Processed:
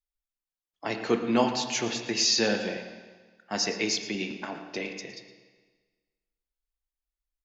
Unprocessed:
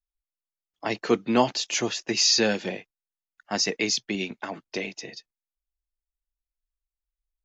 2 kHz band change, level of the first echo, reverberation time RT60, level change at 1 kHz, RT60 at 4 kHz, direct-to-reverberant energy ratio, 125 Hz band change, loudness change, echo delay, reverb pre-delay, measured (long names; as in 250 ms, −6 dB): −2.0 dB, −14.5 dB, 1.4 s, −2.5 dB, 1.3 s, 4.5 dB, −2.0 dB, −3.0 dB, 113 ms, 17 ms